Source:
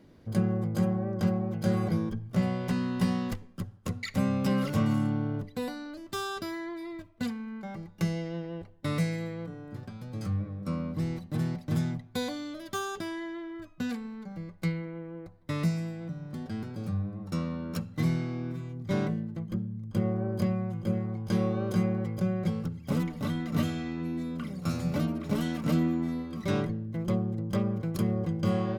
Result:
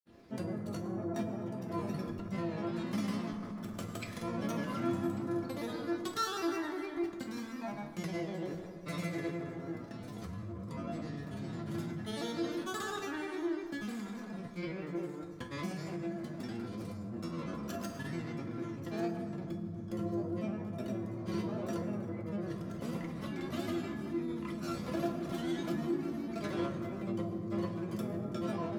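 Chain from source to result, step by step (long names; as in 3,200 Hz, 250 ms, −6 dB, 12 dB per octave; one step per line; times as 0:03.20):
granular cloud, pitch spread up and down by 3 semitones
convolution reverb RT60 2.2 s, pre-delay 7 ms, DRR 4.5 dB
in parallel at −2 dB: compressor whose output falls as the input rises −37 dBFS, ratio −1
on the sum: low-shelf EQ 110 Hz −11.5 dB
tuned comb filter 340 Hz, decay 0.23 s, harmonics all, mix 80%
on a send: delay with a high-pass on its return 1,145 ms, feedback 34%, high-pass 4,600 Hz, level −11 dB
on the sum: level +3.5 dB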